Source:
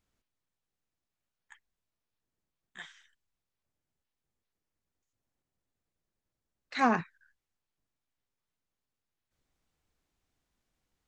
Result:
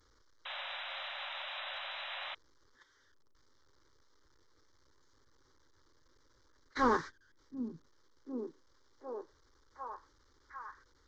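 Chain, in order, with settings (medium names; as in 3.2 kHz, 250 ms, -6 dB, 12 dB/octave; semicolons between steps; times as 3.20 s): one-bit delta coder 32 kbps, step -40.5 dBFS; gate -39 dBFS, range -22 dB; static phaser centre 700 Hz, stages 6; on a send: repeats whose band climbs or falls 748 ms, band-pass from 190 Hz, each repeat 0.7 oct, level -2.5 dB; on the sum: painted sound noise, 0.45–2.35 s, 530–4000 Hz -46 dBFS; trim +3.5 dB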